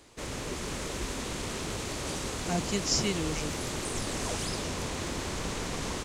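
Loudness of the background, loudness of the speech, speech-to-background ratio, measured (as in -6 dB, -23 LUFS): -34.0 LUFS, -31.5 LUFS, 2.5 dB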